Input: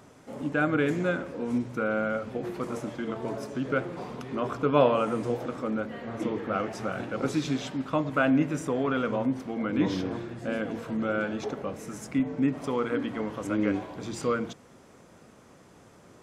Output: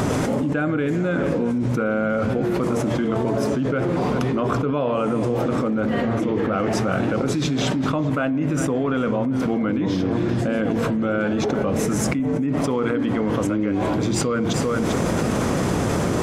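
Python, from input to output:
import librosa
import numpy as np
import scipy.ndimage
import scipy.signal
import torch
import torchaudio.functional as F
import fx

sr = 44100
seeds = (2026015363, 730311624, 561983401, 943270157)

y = fx.low_shelf(x, sr, hz=420.0, db=6.5)
y = y + 10.0 ** (-19.0 / 20.0) * np.pad(y, (int(395 * sr / 1000.0), 0))[:len(y)]
y = fx.env_flatten(y, sr, amount_pct=100)
y = y * librosa.db_to_amplitude(-6.5)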